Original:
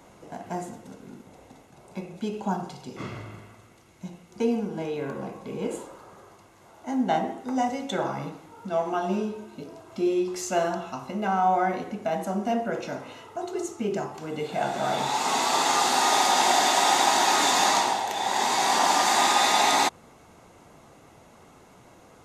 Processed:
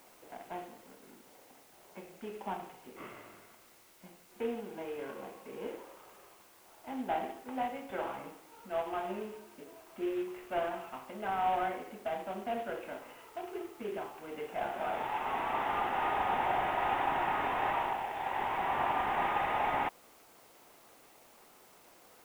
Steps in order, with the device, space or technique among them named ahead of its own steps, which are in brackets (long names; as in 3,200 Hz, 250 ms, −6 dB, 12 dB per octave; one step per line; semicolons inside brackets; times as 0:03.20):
army field radio (band-pass filter 330–3,100 Hz; variable-slope delta modulation 16 kbit/s; white noise bed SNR 26 dB)
level −7.5 dB